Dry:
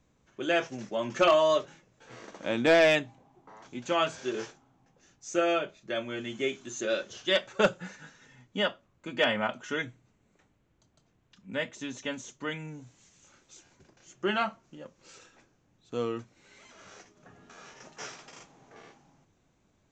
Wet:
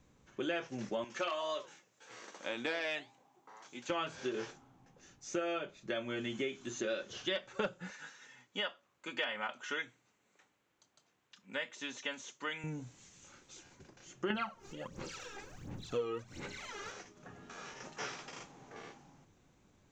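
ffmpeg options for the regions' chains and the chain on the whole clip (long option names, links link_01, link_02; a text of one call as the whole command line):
ffmpeg -i in.wav -filter_complex "[0:a]asettb=1/sr,asplit=3[link_01][link_02][link_03];[link_01]atrim=end=1.044[link_04];[link_02]atrim=start=1.04:end=3.9,asetpts=PTS-STARTPTS,afade=type=in:duration=0.004:curve=qsin,afade=type=out:start_time=2.856:duration=0.004:curve=qsin,highpass=frequency=630:poles=1,highshelf=frequency=5900:gain=8,flanger=delay=5.9:depth=3.3:regen=-83:speed=1.9:shape=sinusoidal[link_05];[link_03]atrim=start=3.896[link_06];[link_04][link_05]acrossfade=duration=0.004:curve1=hsin:curve2=qsin[link_07];[link_07][link_06]acrossfade=duration=0.004:curve1=qsin:curve2=hsin,asettb=1/sr,asplit=3[link_08][link_09][link_10];[link_08]atrim=end=7.904[link_11];[link_09]atrim=start=7.9:end=12.64,asetpts=PTS-STARTPTS,afade=type=in:duration=0.004:curve=qsin,afade=type=out:start_time=4.736:duration=0.004:curve=qsin,highpass=frequency=300:poles=1,lowshelf=frequency=460:gain=-10.5[link_12];[link_10]atrim=start=12.636[link_13];[link_11][link_12]acrossfade=duration=0.004:curve1=hsin:curve2=qsin[link_14];[link_14][link_13]acrossfade=duration=0.004:curve1=qsin:curve2=hsin,asettb=1/sr,asplit=3[link_15][link_16][link_17];[link_15]atrim=end=14.304[link_18];[link_16]atrim=start=14.3:end=16.92,asetpts=PTS-STARTPTS,afade=type=in:duration=0.004:curve=qsin,afade=type=out:start_time=2.616:duration=0.004:curve=qsin,acompressor=mode=upward:threshold=-43dB:ratio=2.5:attack=3.2:release=140:knee=2.83:detection=peak,aphaser=in_gain=1:out_gain=1:delay=2.5:decay=0.7:speed=1.4:type=sinusoidal[link_19];[link_17]atrim=start=16.916[link_20];[link_18][link_19]acrossfade=duration=0.004:curve1=hsin:curve2=qsin[link_21];[link_21][link_20]acrossfade=duration=0.004:curve1=qsin:curve2=hsin,acrossover=split=5300[link_22][link_23];[link_23]acompressor=threshold=-59dB:ratio=4:attack=1:release=60[link_24];[link_22][link_24]amix=inputs=2:normalize=0,bandreject=frequency=650:width=14,acompressor=threshold=-37dB:ratio=4,volume=2dB" out.wav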